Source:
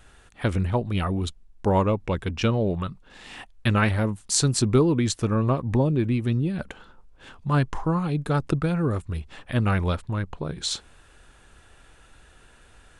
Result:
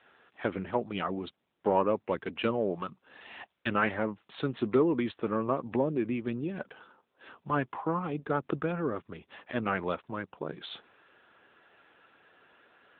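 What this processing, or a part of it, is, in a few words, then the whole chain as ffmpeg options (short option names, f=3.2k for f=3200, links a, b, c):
telephone: -af "highpass=290,lowpass=3.4k,asoftclip=type=tanh:threshold=-12dB,volume=-1.5dB" -ar 8000 -c:a libopencore_amrnb -b:a 10200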